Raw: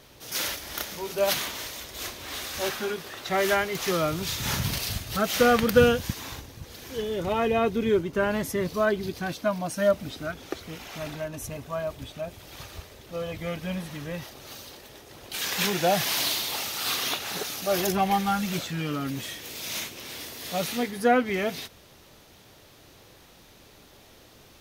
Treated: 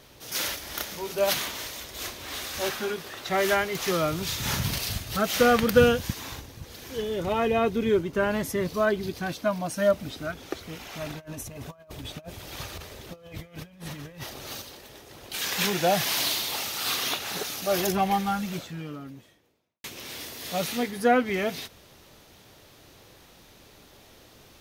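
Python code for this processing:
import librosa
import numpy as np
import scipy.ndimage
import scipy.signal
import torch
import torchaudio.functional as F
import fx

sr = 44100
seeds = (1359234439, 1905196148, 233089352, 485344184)

y = fx.over_compress(x, sr, threshold_db=-39.0, ratio=-0.5, at=(11.1, 14.62))
y = fx.studio_fade_out(y, sr, start_s=17.81, length_s=2.03)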